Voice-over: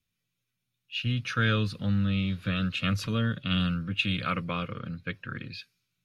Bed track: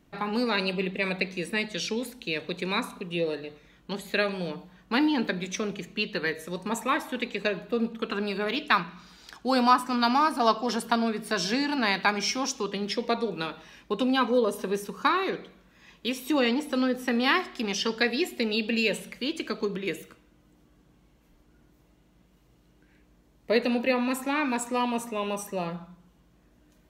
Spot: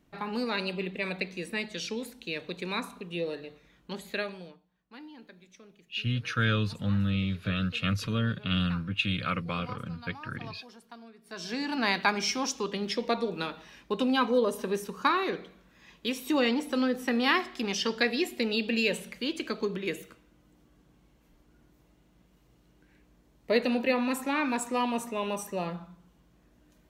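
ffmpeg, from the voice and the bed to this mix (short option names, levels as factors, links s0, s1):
-filter_complex "[0:a]adelay=5000,volume=0.891[s0];[1:a]volume=7.5,afade=t=out:st=4.04:d=0.56:silence=0.112202,afade=t=in:st=11.23:d=0.65:silence=0.0794328[s1];[s0][s1]amix=inputs=2:normalize=0"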